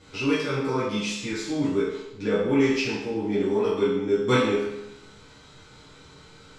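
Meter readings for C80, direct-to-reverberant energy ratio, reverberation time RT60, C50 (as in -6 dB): 4.0 dB, -10.5 dB, 0.85 s, 1.0 dB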